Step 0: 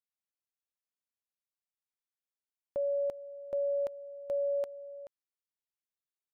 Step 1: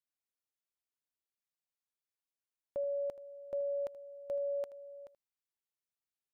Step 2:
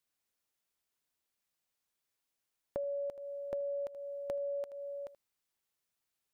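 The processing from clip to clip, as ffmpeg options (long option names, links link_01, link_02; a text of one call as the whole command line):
ffmpeg -i in.wav -af "aecho=1:1:79:0.15,volume=-3.5dB" out.wav
ffmpeg -i in.wav -af "acompressor=threshold=-44dB:ratio=6,volume=8dB" out.wav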